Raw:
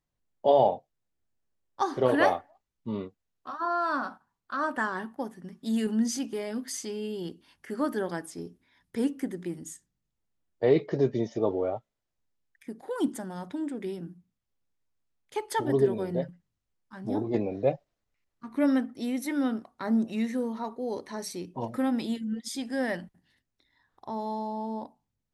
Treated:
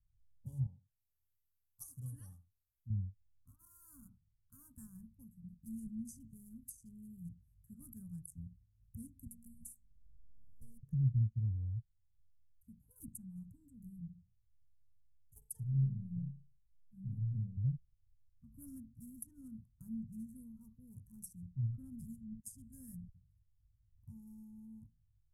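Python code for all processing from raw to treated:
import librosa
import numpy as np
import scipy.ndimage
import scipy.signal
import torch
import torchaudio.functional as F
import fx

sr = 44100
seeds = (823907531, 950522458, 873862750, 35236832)

y = fx.chain(x, sr, fx.riaa(side='recording'),
    fx.echo_single(ms=82, db=-15.5), at=(0.66, 2.9))
y = fx.chain(y, sr, fx.robotise(hz=233.0),
    fx.band_squash(depth_pct=100), at=(9.26, 10.83))
y = fx.chain(y, sr, fx.fixed_phaser(hz=310.0, stages=6),
    fx.room_flutter(wall_m=6.2, rt60_s=0.33), at=(15.38, 17.57))
y = fx.wiener(y, sr, points=9)
y = scipy.signal.sosfilt(scipy.signal.cheby2(4, 60, [340.0, 4200.0], 'bandstop', fs=sr, output='sos'), y)
y = fx.env_lowpass_down(y, sr, base_hz=1800.0, full_db=-45.0)
y = F.gain(torch.from_numpy(y), 12.5).numpy()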